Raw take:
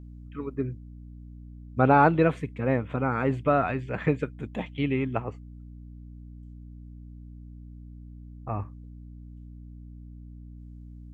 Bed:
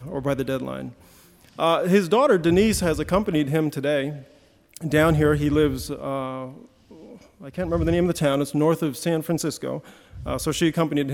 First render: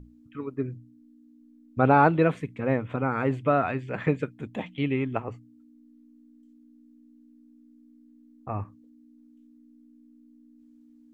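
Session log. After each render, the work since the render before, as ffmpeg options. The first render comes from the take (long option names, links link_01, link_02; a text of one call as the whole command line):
ffmpeg -i in.wav -af "bandreject=frequency=60:width_type=h:width=6,bandreject=frequency=120:width_type=h:width=6,bandreject=frequency=180:width_type=h:width=6" out.wav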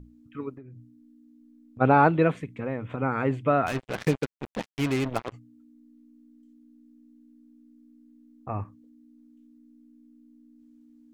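ffmpeg -i in.wav -filter_complex "[0:a]asplit=3[link_01][link_02][link_03];[link_01]afade=type=out:start_time=0.56:duration=0.02[link_04];[link_02]acompressor=threshold=-41dB:ratio=12:attack=3.2:release=140:knee=1:detection=peak,afade=type=in:start_time=0.56:duration=0.02,afade=type=out:start_time=1.8:duration=0.02[link_05];[link_03]afade=type=in:start_time=1.8:duration=0.02[link_06];[link_04][link_05][link_06]amix=inputs=3:normalize=0,asplit=3[link_07][link_08][link_09];[link_07]afade=type=out:start_time=2.32:duration=0.02[link_10];[link_08]acompressor=threshold=-28dB:ratio=2.5:attack=3.2:release=140:knee=1:detection=peak,afade=type=in:start_time=2.32:duration=0.02,afade=type=out:start_time=2.98:duration=0.02[link_11];[link_09]afade=type=in:start_time=2.98:duration=0.02[link_12];[link_10][link_11][link_12]amix=inputs=3:normalize=0,asplit=3[link_13][link_14][link_15];[link_13]afade=type=out:start_time=3.66:duration=0.02[link_16];[link_14]acrusher=bits=4:mix=0:aa=0.5,afade=type=in:start_time=3.66:duration=0.02,afade=type=out:start_time=5.32:duration=0.02[link_17];[link_15]afade=type=in:start_time=5.32:duration=0.02[link_18];[link_16][link_17][link_18]amix=inputs=3:normalize=0" out.wav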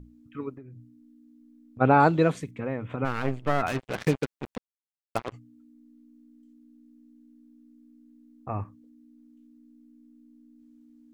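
ffmpeg -i in.wav -filter_complex "[0:a]asettb=1/sr,asplit=3[link_01][link_02][link_03];[link_01]atrim=end=2.004[link_04];[link_02]atrim=start=2:end=2.51,asetpts=PTS-STARTPTS,afade=type=in:duration=0.004:curve=qsin,afade=type=out:start_time=0.506:duration=0.004:curve=qsin,highshelf=frequency=3600:width_type=q:width=1.5:gain=10.5[link_05];[link_03]atrim=start=2.506[link_06];[link_04][link_05]acrossfade=duration=0.004:curve1=hsin:curve2=qsin[link_07];[link_07][link_06]acrossfade=duration=0.004:curve1=qsin:curve2=hsin,asplit=3[link_08][link_09][link_10];[link_08]afade=type=out:start_time=3.04:duration=0.02[link_11];[link_09]aeval=exprs='max(val(0),0)':channel_layout=same,afade=type=in:start_time=3.04:duration=0.02,afade=type=out:start_time=3.61:duration=0.02[link_12];[link_10]afade=type=in:start_time=3.61:duration=0.02[link_13];[link_11][link_12][link_13]amix=inputs=3:normalize=0,asplit=3[link_14][link_15][link_16];[link_14]atrim=end=4.58,asetpts=PTS-STARTPTS,afade=type=out:start_time=4.576:duration=0.004:curve=hsin[link_17];[link_15]atrim=start=4.58:end=5.15,asetpts=PTS-STARTPTS,volume=0[link_18];[link_16]atrim=start=5.15,asetpts=PTS-STARTPTS,afade=type=in:duration=0.004:curve=hsin[link_19];[link_17][link_18][link_19]concat=n=3:v=0:a=1" out.wav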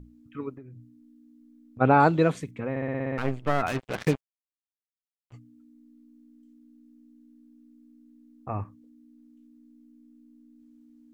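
ffmpeg -i in.wav -filter_complex "[0:a]asplit=11[link_01][link_02][link_03][link_04][link_05][link_06][link_07][link_08][link_09][link_10][link_11];[link_01]atrim=end=2.762[link_12];[link_02]atrim=start=2.698:end=2.762[link_13];[link_03]atrim=start=2.698:end=2.762[link_14];[link_04]atrim=start=2.698:end=2.762[link_15];[link_05]atrim=start=2.698:end=2.762[link_16];[link_06]atrim=start=2.698:end=2.762[link_17];[link_07]atrim=start=2.698:end=2.762[link_18];[link_08]atrim=start=2.698:end=2.762[link_19];[link_09]atrim=start=3.178:end=4.21,asetpts=PTS-STARTPTS,afade=type=out:start_time=1.028:duration=0.004:curve=hsin[link_20];[link_10]atrim=start=4.21:end=5.3,asetpts=PTS-STARTPTS,volume=0[link_21];[link_11]atrim=start=5.3,asetpts=PTS-STARTPTS,afade=type=in:duration=0.004:curve=hsin[link_22];[link_12][link_13]acrossfade=duration=0.004:curve1=hsin:curve2=hsin[link_23];[link_23][link_14]acrossfade=duration=0.004:curve1=hsin:curve2=hsin[link_24];[link_24][link_15]acrossfade=duration=0.004:curve1=hsin:curve2=hsin[link_25];[link_25][link_16]acrossfade=duration=0.004:curve1=hsin:curve2=hsin[link_26];[link_26][link_17]acrossfade=duration=0.004:curve1=hsin:curve2=hsin[link_27];[link_27][link_18]acrossfade=duration=0.004:curve1=hsin:curve2=hsin[link_28];[link_28][link_19]acrossfade=duration=0.004:curve1=hsin:curve2=hsin[link_29];[link_20][link_21][link_22]concat=n=3:v=0:a=1[link_30];[link_29][link_30]acrossfade=duration=0.004:curve1=hsin:curve2=hsin" out.wav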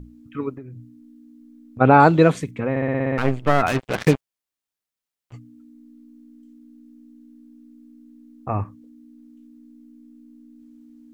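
ffmpeg -i in.wav -af "volume=7.5dB,alimiter=limit=-1dB:level=0:latency=1" out.wav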